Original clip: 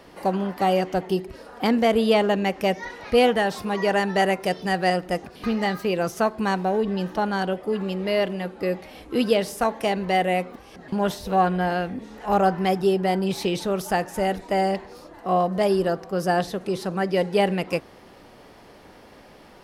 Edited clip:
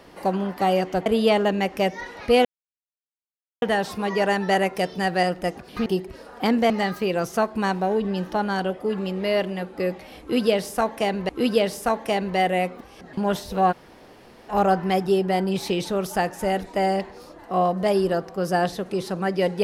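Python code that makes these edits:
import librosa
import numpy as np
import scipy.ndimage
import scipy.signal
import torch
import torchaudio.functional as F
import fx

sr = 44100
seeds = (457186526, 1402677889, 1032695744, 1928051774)

y = fx.edit(x, sr, fx.move(start_s=1.06, length_s=0.84, to_s=5.53),
    fx.insert_silence(at_s=3.29, length_s=1.17),
    fx.repeat(start_s=9.04, length_s=1.08, count=2),
    fx.room_tone_fill(start_s=11.47, length_s=0.77, crossfade_s=0.02), tone=tone)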